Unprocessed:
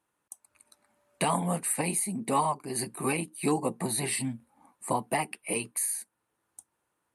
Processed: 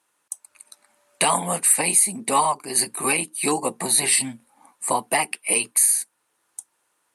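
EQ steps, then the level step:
high-frequency loss of the air 53 metres
RIAA equalisation recording
+7.5 dB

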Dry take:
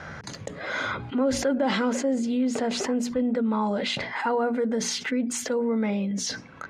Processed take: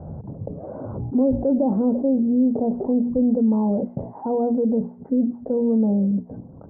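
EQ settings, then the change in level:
Butterworth low-pass 810 Hz 36 dB per octave
low-shelf EQ 300 Hz +11 dB
0.0 dB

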